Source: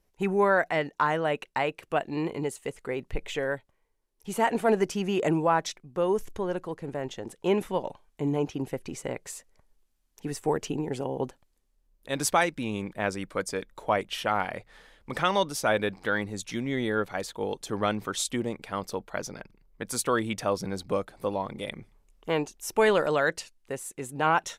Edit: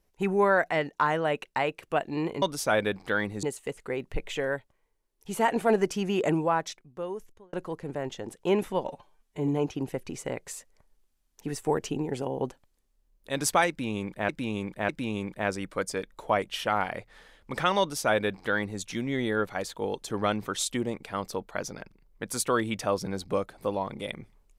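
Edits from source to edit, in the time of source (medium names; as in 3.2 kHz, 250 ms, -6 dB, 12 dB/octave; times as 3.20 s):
5.23–6.52 s: fade out
7.87–8.27 s: stretch 1.5×
12.48–13.08 s: loop, 3 plays
15.39–16.40 s: copy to 2.42 s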